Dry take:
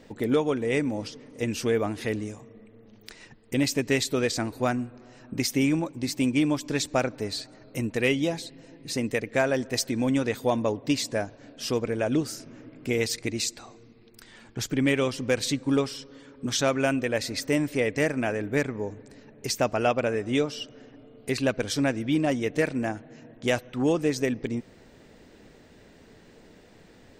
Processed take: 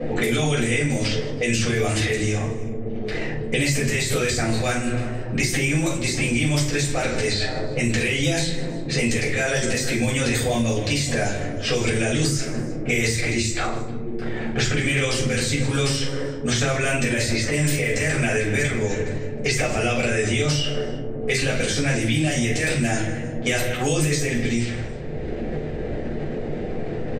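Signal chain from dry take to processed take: low-pass opened by the level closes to 460 Hz, open at -24 dBFS; graphic EQ 250/1000/2000/8000 Hz -11/-8/+6/+10 dB; limiter -23.5 dBFS, peak gain reduction 15.5 dB; transient shaper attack -3 dB, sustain +10 dB; feedback echo 0.156 s, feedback 29%, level -19 dB; shoebox room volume 300 m³, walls furnished, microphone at 6 m; three-band squash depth 100%

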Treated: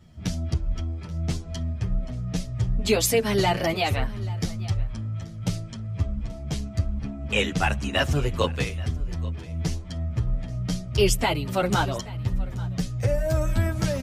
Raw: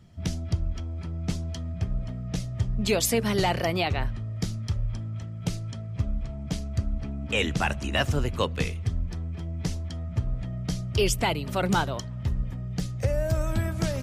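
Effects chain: on a send: echo 0.832 s -20 dB; on the sum: endless flanger 8.7 ms -2.5 Hz; gain +5 dB

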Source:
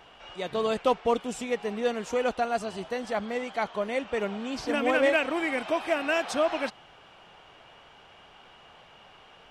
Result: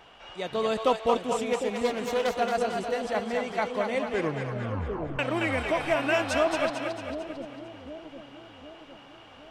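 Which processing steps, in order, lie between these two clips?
1.53–2.33 self-modulated delay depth 0.23 ms; 4.01 tape stop 1.18 s; split-band echo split 520 Hz, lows 0.757 s, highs 0.224 s, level -4.5 dB

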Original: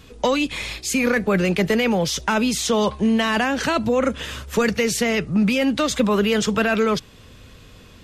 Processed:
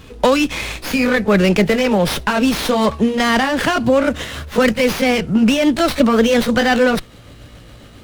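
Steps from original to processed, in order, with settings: gliding pitch shift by +2.5 st starting unshifted; running maximum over 5 samples; gain +6.5 dB

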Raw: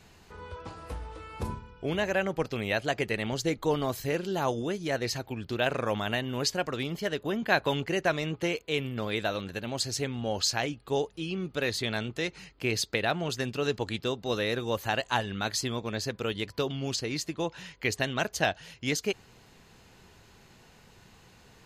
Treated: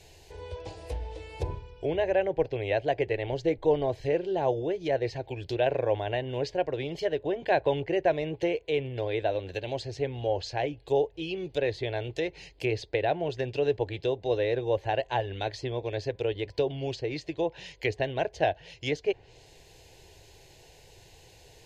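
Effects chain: fixed phaser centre 520 Hz, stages 4; treble ducked by the level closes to 1900 Hz, closed at -31 dBFS; gain +5 dB

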